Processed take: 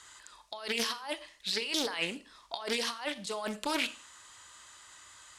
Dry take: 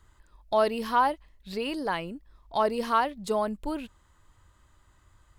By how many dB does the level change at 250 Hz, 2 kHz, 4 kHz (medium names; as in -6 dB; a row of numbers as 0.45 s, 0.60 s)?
-6.5 dB, 0.0 dB, +7.0 dB